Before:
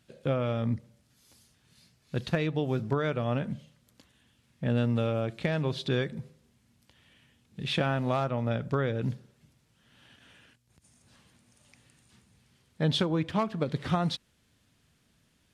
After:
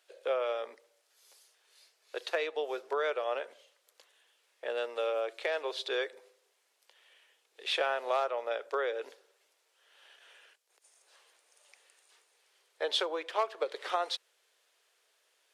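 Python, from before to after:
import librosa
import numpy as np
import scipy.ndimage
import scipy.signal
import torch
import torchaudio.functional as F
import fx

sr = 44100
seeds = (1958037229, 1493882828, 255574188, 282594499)

y = scipy.signal.sosfilt(scipy.signal.butter(8, 410.0, 'highpass', fs=sr, output='sos'), x)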